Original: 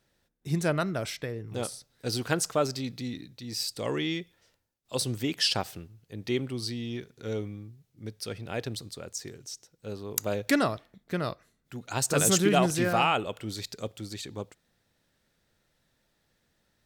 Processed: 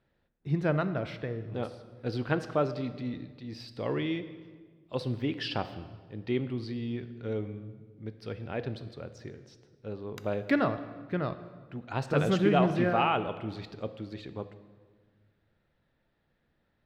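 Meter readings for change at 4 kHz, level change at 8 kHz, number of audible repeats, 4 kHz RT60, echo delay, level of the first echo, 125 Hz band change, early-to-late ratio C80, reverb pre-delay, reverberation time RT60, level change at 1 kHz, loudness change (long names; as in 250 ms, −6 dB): −9.5 dB, below −25 dB, no echo audible, 1.2 s, no echo audible, no echo audible, +0.5 dB, 14.0 dB, 7 ms, 1.5 s, −1.5 dB, −2.0 dB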